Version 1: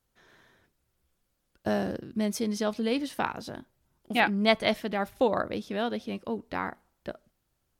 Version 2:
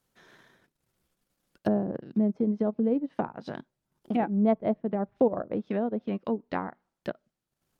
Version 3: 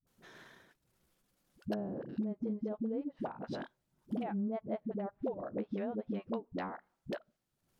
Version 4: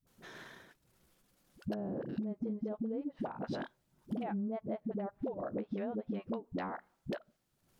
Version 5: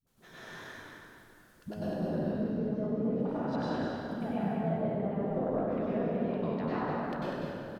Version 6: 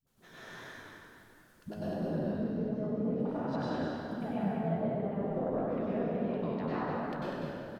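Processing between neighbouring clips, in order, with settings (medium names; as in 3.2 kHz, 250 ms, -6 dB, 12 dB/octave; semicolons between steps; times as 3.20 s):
transient shaper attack +1 dB, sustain -11 dB; low-pass that closes with the level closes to 570 Hz, closed at -26 dBFS; resonant low shelf 110 Hz -7.5 dB, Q 1.5; trim +2.5 dB
compression 6:1, threshold -35 dBFS, peak gain reduction 16.5 dB; phase dispersion highs, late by 70 ms, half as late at 340 Hz; trim +1 dB
compression, threshold -39 dBFS, peak gain reduction 8.5 dB; trim +5 dB
frequency-shifting echo 196 ms, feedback 31%, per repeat -35 Hz, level -5 dB; plate-style reverb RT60 2.5 s, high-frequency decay 0.65×, pre-delay 85 ms, DRR -10 dB; trim -4.5 dB
flange 1.4 Hz, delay 5.9 ms, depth 8.1 ms, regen +76%; trim +3 dB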